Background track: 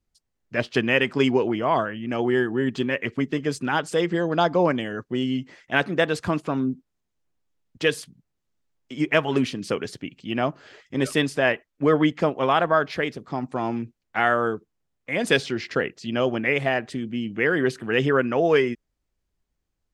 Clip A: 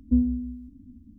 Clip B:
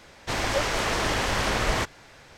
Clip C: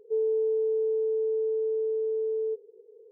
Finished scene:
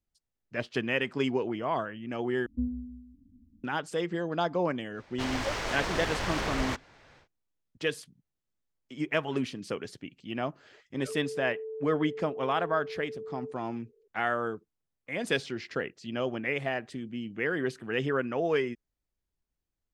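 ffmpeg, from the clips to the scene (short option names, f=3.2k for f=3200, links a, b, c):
-filter_complex "[0:a]volume=-8.5dB[a];[2:a]adynamicsmooth=sensitivity=7:basefreq=5.7k[b];[3:a]aecho=1:1:4.9:0.65[c];[a]asplit=2[d][e];[d]atrim=end=2.464[f];[1:a]atrim=end=1.18,asetpts=PTS-STARTPTS,volume=-10.5dB[g];[e]atrim=start=3.636[h];[b]atrim=end=2.37,asetpts=PTS-STARTPTS,volume=-6.5dB,afade=t=in:d=0.1,afade=t=out:st=2.27:d=0.1,adelay=4910[i];[c]atrim=end=3.11,asetpts=PTS-STARTPTS,volume=-15.5dB,afade=t=in:d=0.004:c=hsin,afade=t=out:st=3.106:d=0.004:c=hsin,adelay=10970[j];[f][g]acrossfade=d=0.004:c1=hsin:c2=hsin[k];[k][h]acrossfade=d=0.004:c1=hsin:c2=hsin[l];[l][i][j]amix=inputs=3:normalize=0"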